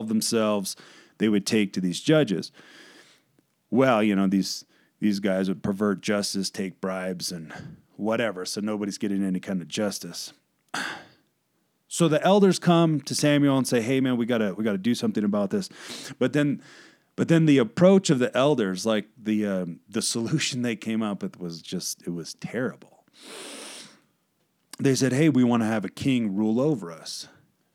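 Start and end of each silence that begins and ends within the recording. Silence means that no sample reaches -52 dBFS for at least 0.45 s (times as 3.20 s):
11.16–11.90 s
24.02–24.71 s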